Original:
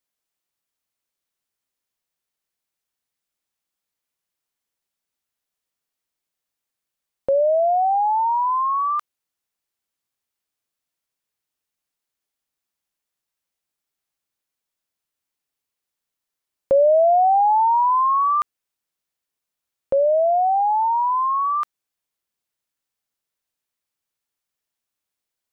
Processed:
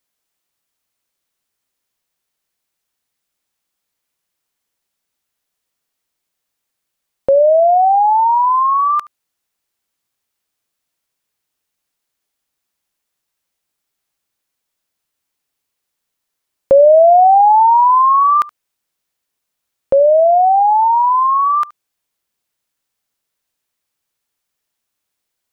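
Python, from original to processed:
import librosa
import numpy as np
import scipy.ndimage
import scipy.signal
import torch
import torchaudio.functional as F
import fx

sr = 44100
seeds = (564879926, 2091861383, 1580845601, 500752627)

y = x + 10.0 ** (-21.5 / 20.0) * np.pad(x, (int(73 * sr / 1000.0), 0))[:len(x)]
y = y * librosa.db_to_amplitude(7.5)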